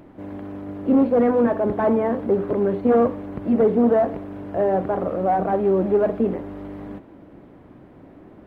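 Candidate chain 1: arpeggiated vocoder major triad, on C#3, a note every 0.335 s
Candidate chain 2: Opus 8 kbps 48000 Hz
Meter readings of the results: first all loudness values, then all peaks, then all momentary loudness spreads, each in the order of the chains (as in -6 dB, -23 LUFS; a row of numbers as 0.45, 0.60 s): -21.5, -21.0 LUFS; -7.5, -8.0 dBFS; 18, 18 LU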